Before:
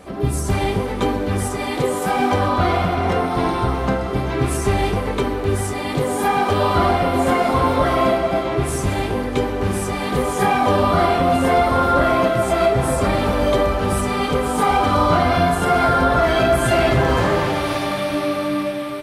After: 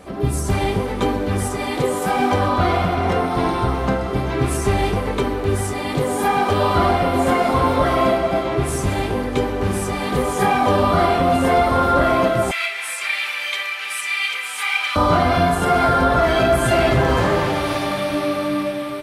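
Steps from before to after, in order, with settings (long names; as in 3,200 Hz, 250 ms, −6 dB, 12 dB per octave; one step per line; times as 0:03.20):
0:12.51–0:14.96: high-pass with resonance 2,300 Hz, resonance Q 3.5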